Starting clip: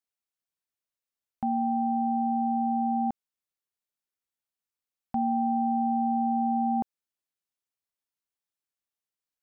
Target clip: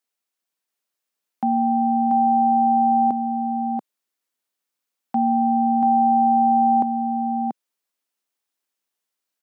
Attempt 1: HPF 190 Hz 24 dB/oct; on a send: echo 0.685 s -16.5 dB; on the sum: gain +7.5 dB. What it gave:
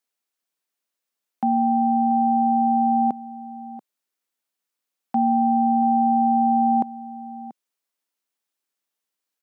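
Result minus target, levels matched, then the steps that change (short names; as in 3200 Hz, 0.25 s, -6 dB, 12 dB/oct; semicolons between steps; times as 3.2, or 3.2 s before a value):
echo-to-direct -12 dB
change: echo 0.685 s -4.5 dB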